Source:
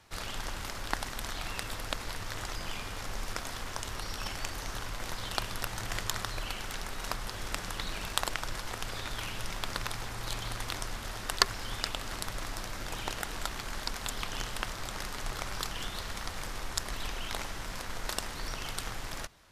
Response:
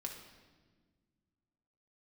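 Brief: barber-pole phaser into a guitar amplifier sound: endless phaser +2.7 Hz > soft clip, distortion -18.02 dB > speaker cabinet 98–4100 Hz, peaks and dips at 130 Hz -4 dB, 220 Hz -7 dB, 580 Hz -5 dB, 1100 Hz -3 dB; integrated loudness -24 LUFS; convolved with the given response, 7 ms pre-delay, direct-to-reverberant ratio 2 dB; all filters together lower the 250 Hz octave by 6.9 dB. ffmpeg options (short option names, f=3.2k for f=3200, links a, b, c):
-filter_complex "[0:a]equalizer=f=250:t=o:g=-6,asplit=2[a][b];[1:a]atrim=start_sample=2205,adelay=7[c];[b][c]afir=irnorm=-1:irlink=0,volume=0dB[d];[a][d]amix=inputs=2:normalize=0,asplit=2[e][f];[f]afreqshift=2.7[g];[e][g]amix=inputs=2:normalize=1,asoftclip=threshold=-21.5dB,highpass=98,equalizer=f=130:t=q:w=4:g=-4,equalizer=f=220:t=q:w=4:g=-7,equalizer=f=580:t=q:w=4:g=-5,equalizer=f=1.1k:t=q:w=4:g=-3,lowpass=f=4.1k:w=0.5412,lowpass=f=4.1k:w=1.3066,volume=17.5dB"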